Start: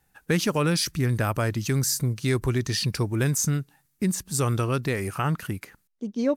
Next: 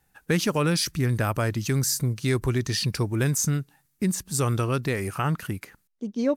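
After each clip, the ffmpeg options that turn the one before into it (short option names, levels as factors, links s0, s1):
-af anull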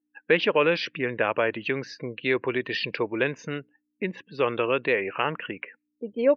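-af "aeval=exprs='val(0)+0.00447*(sin(2*PI*60*n/s)+sin(2*PI*2*60*n/s)/2+sin(2*PI*3*60*n/s)/3+sin(2*PI*4*60*n/s)/4+sin(2*PI*5*60*n/s)/5)':c=same,highpass=460,equalizer=f=490:t=q:w=4:g=5,equalizer=f=750:t=q:w=4:g=-5,equalizer=f=1300:t=q:w=4:g=-7,equalizer=f=2700:t=q:w=4:g=5,lowpass=f=3100:w=0.5412,lowpass=f=3100:w=1.3066,afftdn=nr=36:nf=-50,volume=2"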